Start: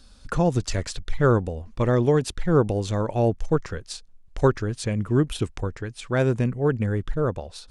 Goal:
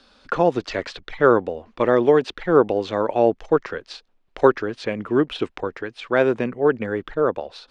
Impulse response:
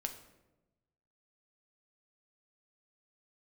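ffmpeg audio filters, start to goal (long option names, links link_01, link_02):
-filter_complex "[0:a]acrossover=split=6200[link_01][link_02];[link_02]acompressor=threshold=-49dB:ratio=4:attack=1:release=60[link_03];[link_01][link_03]amix=inputs=2:normalize=0,acrossover=split=260 4300:gain=0.0794 1 0.0794[link_04][link_05][link_06];[link_04][link_05][link_06]amix=inputs=3:normalize=0,volume=6.5dB"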